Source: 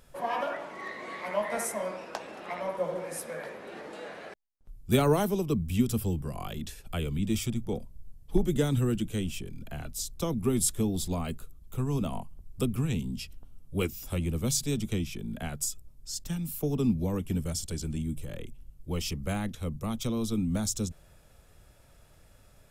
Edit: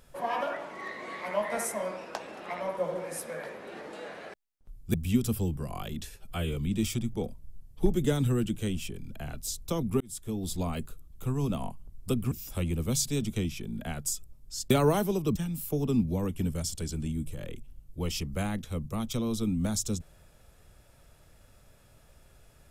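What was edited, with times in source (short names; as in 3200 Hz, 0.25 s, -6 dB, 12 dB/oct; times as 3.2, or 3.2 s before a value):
4.94–5.59 move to 16.26
6.81–7.08 stretch 1.5×
10.52–11.14 fade in
12.83–13.87 cut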